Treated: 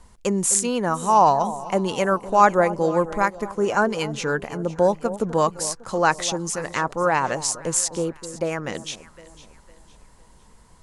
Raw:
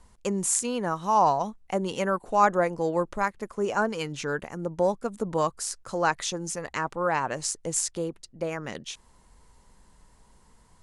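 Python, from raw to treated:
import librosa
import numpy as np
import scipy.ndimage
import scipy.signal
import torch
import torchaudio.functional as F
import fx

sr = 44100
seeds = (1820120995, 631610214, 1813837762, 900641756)

y = fx.echo_alternate(x, sr, ms=253, hz=1000.0, feedback_pct=60, wet_db=-13.5)
y = F.gain(torch.from_numpy(y), 5.5).numpy()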